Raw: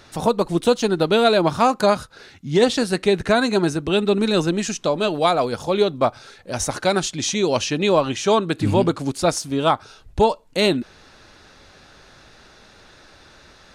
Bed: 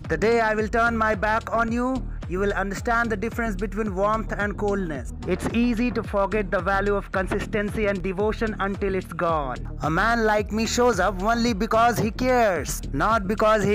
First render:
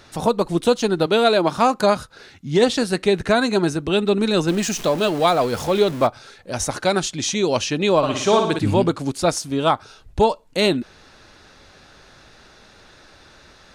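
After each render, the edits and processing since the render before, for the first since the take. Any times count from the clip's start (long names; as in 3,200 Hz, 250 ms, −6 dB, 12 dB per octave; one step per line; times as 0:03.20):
0:01.06–0:01.58: high-pass filter 190 Hz
0:04.48–0:06.07: converter with a step at zero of −28 dBFS
0:07.97–0:08.59: flutter between parallel walls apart 9.8 metres, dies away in 0.64 s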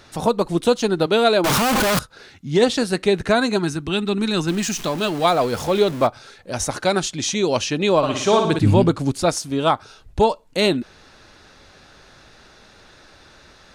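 0:01.44–0:01.99: sign of each sample alone
0:03.56–0:05.23: parametric band 530 Hz −13 dB → −6 dB
0:08.45–0:09.23: low-shelf EQ 170 Hz +9 dB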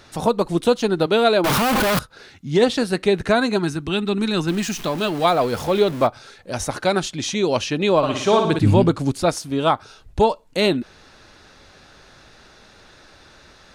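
dynamic equaliser 7,000 Hz, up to −5 dB, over −38 dBFS, Q 1.1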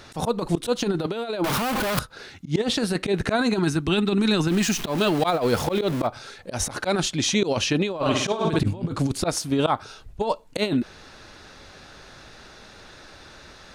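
volume swells 107 ms
compressor whose output falls as the input rises −21 dBFS, ratio −0.5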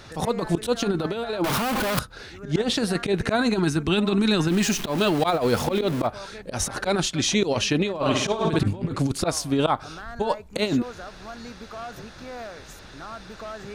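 mix in bed −18 dB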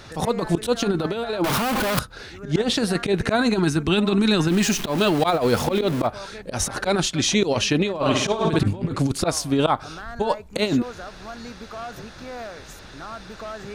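level +2 dB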